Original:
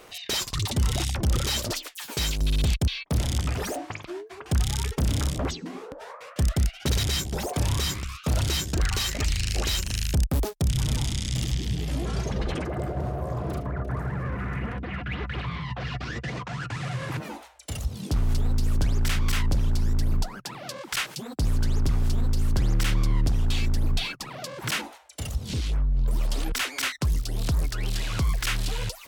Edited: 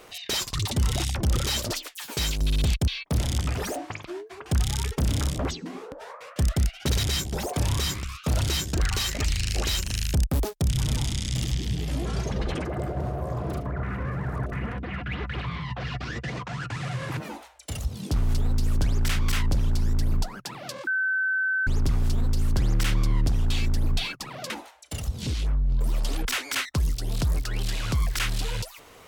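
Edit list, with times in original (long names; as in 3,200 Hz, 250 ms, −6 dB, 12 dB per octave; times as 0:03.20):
0:13.83–0:14.52: reverse
0:20.87–0:21.67: beep over 1,530 Hz −22 dBFS
0:24.50–0:24.77: remove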